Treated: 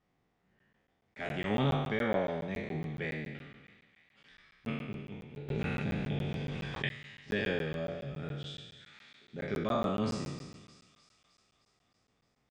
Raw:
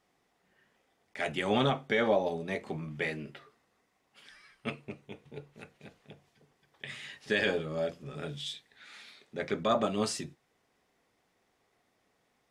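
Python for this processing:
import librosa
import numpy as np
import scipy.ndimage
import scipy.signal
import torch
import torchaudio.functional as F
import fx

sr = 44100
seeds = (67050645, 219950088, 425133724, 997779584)

y = fx.spec_trails(x, sr, decay_s=1.24)
y = scipy.signal.sosfilt(scipy.signal.butter(4, 7900.0, 'lowpass', fs=sr, output='sos'), y)
y = fx.bass_treble(y, sr, bass_db=11, treble_db=-7)
y = fx.echo_wet_highpass(y, sr, ms=308, feedback_pct=63, hz=2400.0, wet_db=-13.5)
y = fx.buffer_crackle(y, sr, first_s=0.59, period_s=0.14, block=512, kind='zero')
y = fx.env_flatten(y, sr, amount_pct=70, at=(5.48, 6.88), fade=0.02)
y = F.gain(torch.from_numpy(y), -8.0).numpy()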